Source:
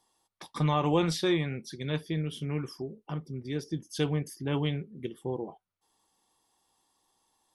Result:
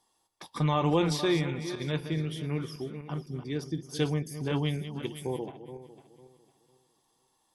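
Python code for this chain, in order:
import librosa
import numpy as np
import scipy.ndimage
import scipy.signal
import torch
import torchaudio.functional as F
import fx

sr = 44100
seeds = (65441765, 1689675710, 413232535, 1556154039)

y = fx.reverse_delay_fb(x, sr, ms=251, feedback_pct=51, wet_db=-10.5)
y = fx.high_shelf(y, sr, hz=2800.0, db=11.5, at=(5.02, 5.46))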